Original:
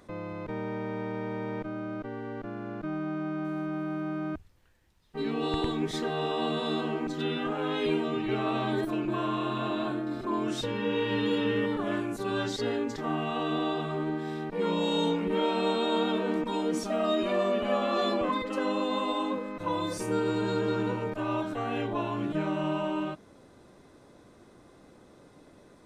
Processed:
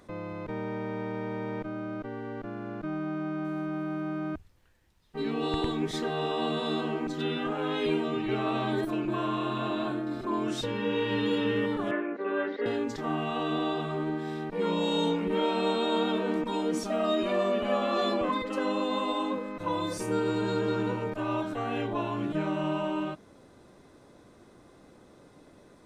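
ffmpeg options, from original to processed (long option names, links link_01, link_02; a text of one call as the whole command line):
ffmpeg -i in.wav -filter_complex "[0:a]asettb=1/sr,asplit=3[link_01][link_02][link_03];[link_01]atrim=end=11.914[link_04];[link_02]atrim=start=11.91:end=12.66,asetpts=PTS-STARTPTS,afade=type=in:duration=0.004:curve=qsin,afade=type=out:start_time=0.746:duration=0.004:curve=qsin,highpass=frequency=260:width=0.5412,highpass=frequency=260:width=1.3066,equalizer=frequency=530:width_type=q:width=4:gain=8,equalizer=frequency=800:width_type=q:width=4:gain=-5,equalizer=frequency=1900:width_type=q:width=4:gain=7,lowpass=frequency=2400:width=0.5412,lowpass=frequency=2400:width=1.3066[link_05];[link_03]atrim=start=12.656[link_06];[link_04][link_05]acrossfade=duration=0.004:curve1=hsin:curve2=qsin[link_07];[link_07][link_06]acrossfade=duration=0.004:curve1=qsin:curve2=hsin" out.wav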